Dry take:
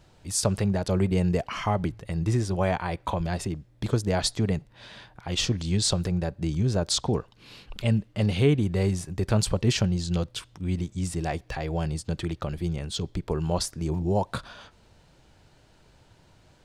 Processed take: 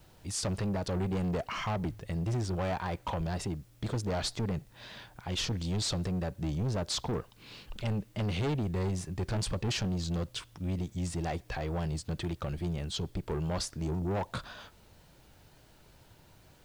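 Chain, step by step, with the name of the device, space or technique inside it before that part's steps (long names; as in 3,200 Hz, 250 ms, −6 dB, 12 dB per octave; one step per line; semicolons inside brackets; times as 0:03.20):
compact cassette (soft clipping −26.5 dBFS, distortion −9 dB; low-pass filter 8,300 Hz 12 dB per octave; tape wow and flutter; white noise bed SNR 35 dB)
level −1.5 dB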